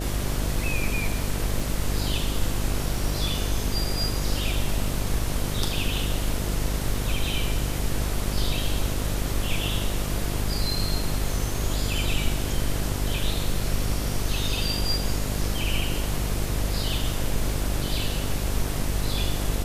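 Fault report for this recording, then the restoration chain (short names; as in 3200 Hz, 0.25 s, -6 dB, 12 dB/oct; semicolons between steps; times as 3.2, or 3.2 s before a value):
buzz 50 Hz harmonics 14 -29 dBFS
1.6 gap 2.5 ms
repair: de-hum 50 Hz, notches 14; interpolate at 1.6, 2.5 ms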